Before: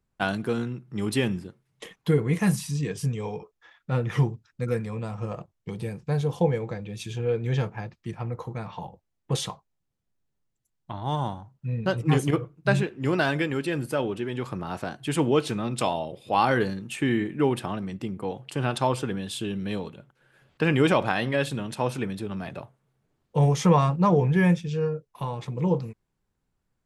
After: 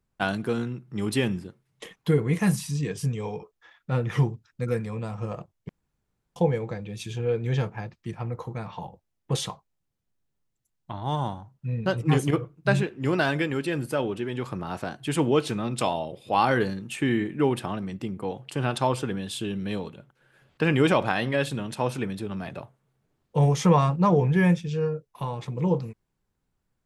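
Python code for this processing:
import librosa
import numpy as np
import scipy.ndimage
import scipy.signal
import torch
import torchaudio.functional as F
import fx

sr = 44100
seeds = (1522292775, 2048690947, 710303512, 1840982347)

y = fx.edit(x, sr, fx.room_tone_fill(start_s=5.69, length_s=0.67), tone=tone)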